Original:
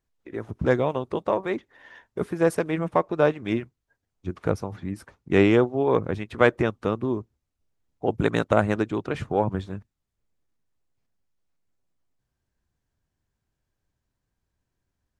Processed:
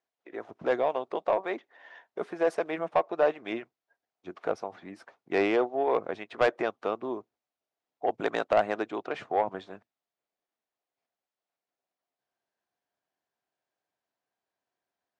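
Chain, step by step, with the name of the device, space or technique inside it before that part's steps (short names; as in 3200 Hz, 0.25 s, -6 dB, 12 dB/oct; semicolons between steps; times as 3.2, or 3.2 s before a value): intercom (BPF 420–5000 Hz; bell 700 Hz +8 dB 0.38 oct; soft clip -12 dBFS, distortion -14 dB); gain -2.5 dB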